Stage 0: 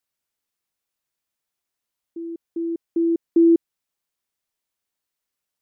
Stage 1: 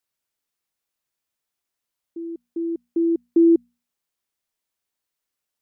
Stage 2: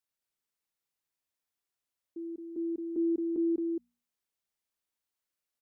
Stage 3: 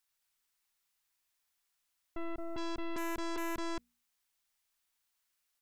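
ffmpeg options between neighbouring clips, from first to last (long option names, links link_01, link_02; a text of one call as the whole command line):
ffmpeg -i in.wav -af "bandreject=frequency=60:width_type=h:width=6,bandreject=frequency=120:width_type=h:width=6,bandreject=frequency=180:width_type=h:width=6,bandreject=frequency=240:width_type=h:width=6" out.wav
ffmpeg -i in.wav -af "alimiter=limit=-17dB:level=0:latency=1:release=274,aecho=1:1:220:0.631,volume=-7.5dB" out.wav
ffmpeg -i in.wav -af "asoftclip=type=tanh:threshold=-38dB,equalizer=frequency=125:width_type=o:width=1:gain=-10,equalizer=frequency=250:width_type=o:width=1:gain=-7,equalizer=frequency=500:width_type=o:width=1:gain=-9,aeval=exprs='0.00944*(cos(1*acos(clip(val(0)/0.00944,-1,1)))-cos(1*PI/2))+0.00422*(cos(2*acos(clip(val(0)/0.00944,-1,1)))-cos(2*PI/2))+0.00168*(cos(4*acos(clip(val(0)/0.00944,-1,1)))-cos(4*PI/2))+0.00299*(cos(8*acos(clip(val(0)/0.00944,-1,1)))-cos(8*PI/2))':channel_layout=same,volume=8dB" out.wav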